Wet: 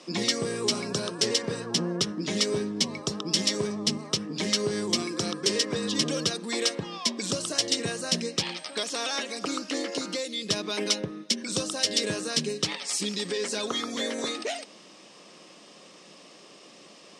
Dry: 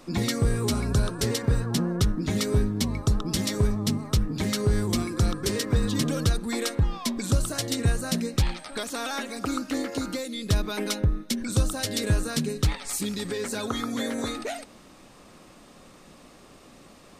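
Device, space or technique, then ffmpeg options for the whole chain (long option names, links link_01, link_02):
television speaker: -af "highpass=frequency=190:width=0.5412,highpass=frequency=190:width=1.3066,equalizer=frequency=250:width_type=q:width=4:gain=-9,equalizer=frequency=810:width_type=q:width=4:gain=-4,equalizer=frequency=1400:width_type=q:width=4:gain=-6,equalizer=frequency=3000:width_type=q:width=4:gain=6,equalizer=frequency=5300:width_type=q:width=4:gain=8,lowpass=frequency=8900:width=0.5412,lowpass=frequency=8900:width=1.3066,volume=1.5dB"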